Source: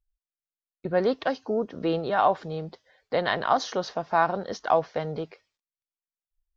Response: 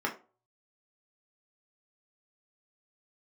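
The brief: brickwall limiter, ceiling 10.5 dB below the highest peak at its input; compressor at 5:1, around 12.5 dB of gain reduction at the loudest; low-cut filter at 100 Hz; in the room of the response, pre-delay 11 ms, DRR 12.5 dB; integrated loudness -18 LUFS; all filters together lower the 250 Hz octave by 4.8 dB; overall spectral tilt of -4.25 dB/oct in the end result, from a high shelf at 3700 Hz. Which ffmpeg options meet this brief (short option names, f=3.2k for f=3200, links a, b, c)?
-filter_complex "[0:a]highpass=100,equalizer=f=250:t=o:g=-7,highshelf=f=3.7k:g=-6.5,acompressor=threshold=-31dB:ratio=5,alimiter=level_in=5dB:limit=-24dB:level=0:latency=1,volume=-5dB,asplit=2[a][b];[1:a]atrim=start_sample=2205,adelay=11[c];[b][c]afir=irnorm=-1:irlink=0,volume=-20.5dB[d];[a][d]amix=inputs=2:normalize=0,volume=22.5dB"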